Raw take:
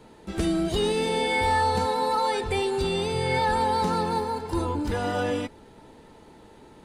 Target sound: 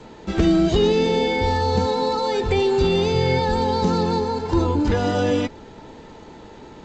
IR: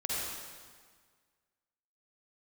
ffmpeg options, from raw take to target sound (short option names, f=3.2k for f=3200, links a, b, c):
-filter_complex "[0:a]acrossover=split=540|3300[a][b][c];[b]acompressor=threshold=-36dB:ratio=6[d];[c]alimiter=level_in=10.5dB:limit=-24dB:level=0:latency=1:release=156,volume=-10.5dB[e];[a][d][e]amix=inputs=3:normalize=0,volume=8.5dB" -ar 16000 -c:a g722